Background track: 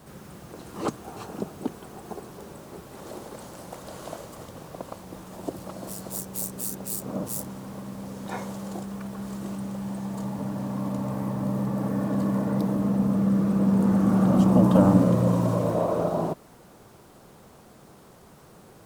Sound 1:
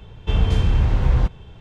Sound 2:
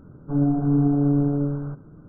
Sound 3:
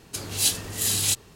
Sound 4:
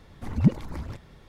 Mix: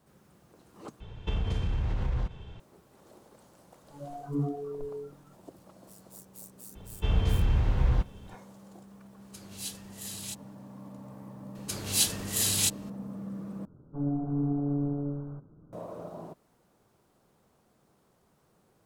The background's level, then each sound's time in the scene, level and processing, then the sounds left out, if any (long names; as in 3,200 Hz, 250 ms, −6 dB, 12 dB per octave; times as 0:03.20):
background track −16.5 dB
0:01.00: overwrite with 1 −3.5 dB + downward compressor, threshold −22 dBFS
0:03.61: mix in 2 −4.5 dB + noise reduction from a noise print of the clip's start 25 dB
0:06.75: mix in 1 −7.5 dB + floating-point word with a short mantissa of 8 bits
0:09.20: mix in 3 −16.5 dB
0:11.55: mix in 3 −3 dB
0:13.65: overwrite with 2 −9 dB + Chebyshev low-pass filter 1,000 Hz
not used: 4